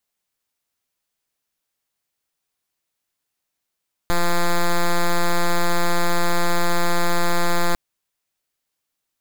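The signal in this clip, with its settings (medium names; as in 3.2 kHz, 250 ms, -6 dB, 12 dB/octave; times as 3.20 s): pulse 173 Hz, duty 6% -16.5 dBFS 3.65 s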